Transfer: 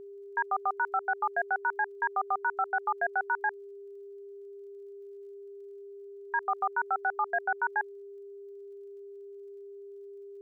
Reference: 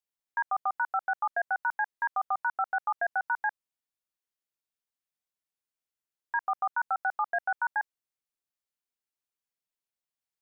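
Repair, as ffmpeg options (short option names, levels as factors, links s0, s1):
-af "adeclick=t=4,bandreject=f=400:w=30,agate=range=0.0891:threshold=0.0126"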